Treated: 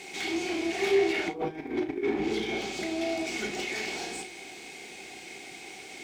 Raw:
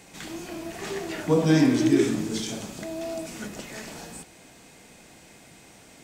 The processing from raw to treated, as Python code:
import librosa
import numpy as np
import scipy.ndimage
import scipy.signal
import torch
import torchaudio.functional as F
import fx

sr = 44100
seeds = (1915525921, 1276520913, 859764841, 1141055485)

y = fx.octave_divider(x, sr, octaves=2, level_db=-5.0)
y = fx.weighting(y, sr, curve='D')
y = fx.env_lowpass_down(y, sr, base_hz=1500.0, full_db=-20.0)
y = fx.low_shelf(y, sr, hz=220.0, db=-8.5, at=(1.29, 2.2))
y = fx.over_compress(y, sr, threshold_db=-29.0, ratio=-0.5)
y = 10.0 ** (-26.5 / 20.0) * np.tanh(y / 10.0 ** (-26.5 / 20.0))
y = fx.small_body(y, sr, hz=(380.0, 760.0, 2200.0), ring_ms=45, db=16)
y = np.sign(y) * np.maximum(np.abs(y) - 10.0 ** (-56.5 / 20.0), 0.0)
y = fx.room_early_taps(y, sr, ms=(33, 53), db=(-9.0, -16.5))
y = y * librosa.db_to_amplitude(-4.0)